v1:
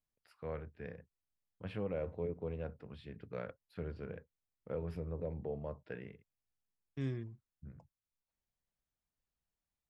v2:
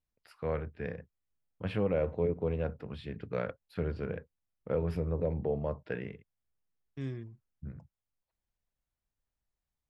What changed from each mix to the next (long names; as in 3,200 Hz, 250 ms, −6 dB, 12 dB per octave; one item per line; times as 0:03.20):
first voice +8.5 dB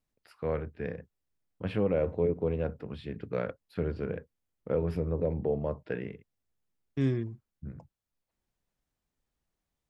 second voice +8.0 dB
master: add parametric band 310 Hz +4 dB 1.5 octaves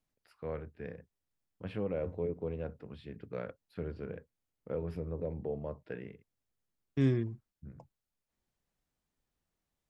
first voice −7.5 dB